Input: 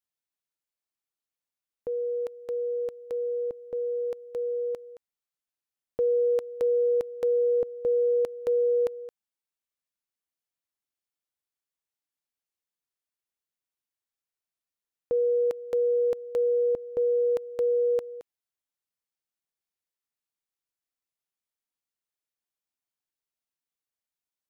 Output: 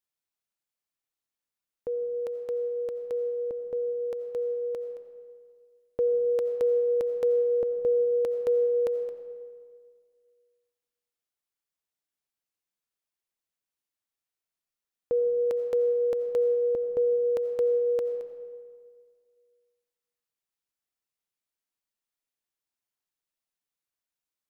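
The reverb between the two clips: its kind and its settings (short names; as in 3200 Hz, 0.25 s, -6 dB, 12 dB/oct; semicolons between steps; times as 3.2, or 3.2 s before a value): digital reverb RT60 1.9 s, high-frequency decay 0.6×, pre-delay 45 ms, DRR 9 dB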